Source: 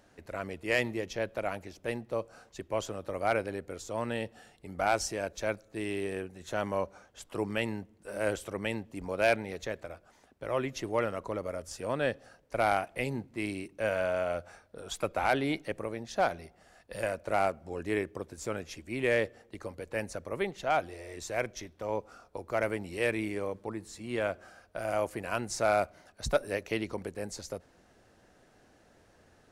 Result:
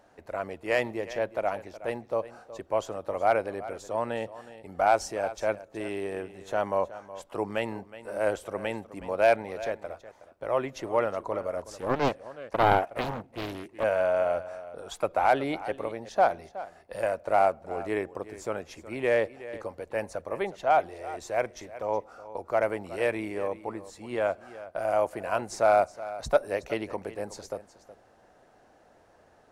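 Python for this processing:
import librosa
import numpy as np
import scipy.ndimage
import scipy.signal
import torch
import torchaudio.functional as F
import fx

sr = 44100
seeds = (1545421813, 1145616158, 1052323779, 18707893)

y = fx.peak_eq(x, sr, hz=770.0, db=10.5, octaves=1.8)
y = y + 10.0 ** (-15.5 / 20.0) * np.pad(y, (int(369 * sr / 1000.0), 0))[:len(y)]
y = fx.doppler_dist(y, sr, depth_ms=0.89, at=(11.57, 13.84))
y = y * librosa.db_to_amplitude(-3.5)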